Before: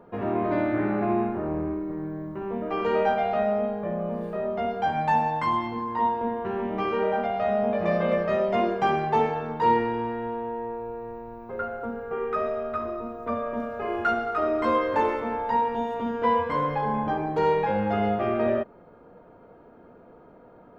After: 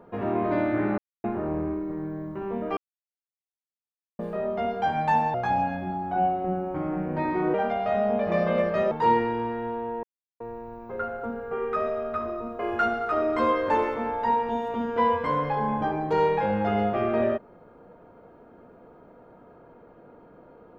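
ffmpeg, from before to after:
ffmpeg -i in.wav -filter_complex "[0:a]asplit=11[link_01][link_02][link_03][link_04][link_05][link_06][link_07][link_08][link_09][link_10][link_11];[link_01]atrim=end=0.98,asetpts=PTS-STARTPTS,afade=type=out:start_time=0.976:duration=0.004:curve=hsin[link_12];[link_02]atrim=start=0.98:end=1.24,asetpts=PTS-STARTPTS,volume=0[link_13];[link_03]atrim=start=1.24:end=2.77,asetpts=PTS-STARTPTS,afade=type=in:duration=0.004:curve=hsin,afade=type=out:start_time=1.526:duration=0.004:curve=hsin[link_14];[link_04]atrim=start=2.77:end=4.19,asetpts=PTS-STARTPTS,volume=0[link_15];[link_05]atrim=start=4.19:end=5.344,asetpts=PTS-STARTPTS,afade=type=in:duration=0.004:curve=hsin[link_16];[link_06]atrim=start=5.34:end=7.08,asetpts=PTS-STARTPTS,asetrate=34839,aresample=44100[link_17];[link_07]atrim=start=7.076:end=8.452[link_18];[link_08]atrim=start=9.508:end=10.63,asetpts=PTS-STARTPTS,afade=type=out:start_time=1.118:duration=0.004:curve=hsin[link_19];[link_09]atrim=start=10.63:end=11,asetpts=PTS-STARTPTS,volume=0[link_20];[link_10]atrim=start=11:end=13.192,asetpts=PTS-STARTPTS,afade=type=in:duration=0.004:curve=hsin[link_21];[link_11]atrim=start=13.848[link_22];[link_12][link_13][link_14][link_15][link_16]concat=n=5:v=0:a=1[link_23];[link_23][link_17]acrossfade=duration=0.004:curve1=hsin:curve2=hsin[link_24];[link_24][link_18]acrossfade=duration=0.004:curve1=hsin:curve2=hsin[link_25];[link_19][link_20][link_21]concat=n=3:v=0:a=1[link_26];[link_25][link_26]acrossfade=duration=0.004:curve1=hsin:curve2=hsin[link_27];[link_27][link_22]acrossfade=duration=0.004:curve1=hsin:curve2=hsin" out.wav

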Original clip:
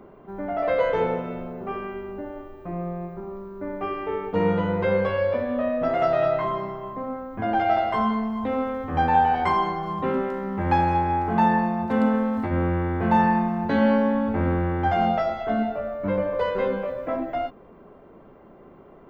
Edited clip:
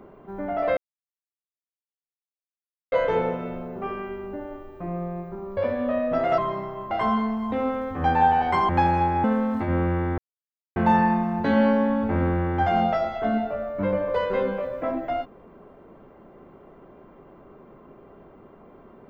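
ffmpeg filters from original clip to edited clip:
ffmpeg -i in.wav -filter_complex "[0:a]asplit=8[link_01][link_02][link_03][link_04][link_05][link_06][link_07][link_08];[link_01]atrim=end=0.77,asetpts=PTS-STARTPTS,afade=type=out:start_time=0.766:duration=0.004:curve=hsin,apad=pad_dur=2.15[link_09];[link_02]atrim=start=0.77:end=3.422,asetpts=PTS-STARTPTS,afade=type=in:duration=0.004:curve=hsin[link_10];[link_03]atrim=start=5.268:end=6.082[link_11];[link_04]atrim=start=6.438:end=6.972[link_12];[link_05]atrim=start=7.838:end=9.622[link_13];[link_06]atrim=start=10.628:end=11.182[link_14];[link_07]atrim=start=12.068:end=13.01,asetpts=PTS-STARTPTS,afade=type=out:start_time=0.938:duration=0.004:curve=hsin,apad=pad_dur=0.58[link_15];[link_08]atrim=start=13.01,asetpts=PTS-STARTPTS,afade=type=in:duration=0.004:curve=hsin[link_16];[link_09][link_10]concat=n=2:v=0:a=1[link_17];[link_17][link_11]acrossfade=duration=0.004:curve1=hsin:curve2=hsin[link_18];[link_18][link_12]acrossfade=duration=0.004:curve1=hsin:curve2=hsin[link_19];[link_19][link_13]acrossfade=duration=0.004:curve1=hsin:curve2=hsin[link_20];[link_20][link_14]acrossfade=duration=0.004:curve1=hsin:curve2=hsin[link_21];[link_15][link_16]concat=n=2:v=0:a=1[link_22];[link_21][link_22]acrossfade=duration=0.004:curve1=hsin:curve2=hsin" out.wav

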